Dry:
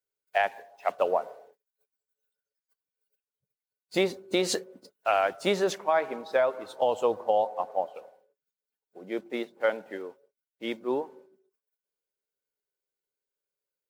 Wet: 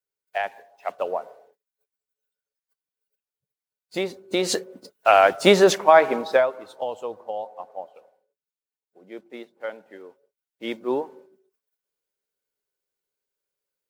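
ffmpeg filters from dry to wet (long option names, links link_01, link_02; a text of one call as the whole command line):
ffmpeg -i in.wav -af "volume=21.5dB,afade=type=in:start_time=4.14:duration=1.3:silence=0.237137,afade=type=out:start_time=6.23:duration=0.25:silence=0.298538,afade=type=out:start_time=6.48:duration=0.55:silence=0.446684,afade=type=in:start_time=9.94:duration=0.94:silence=0.298538" out.wav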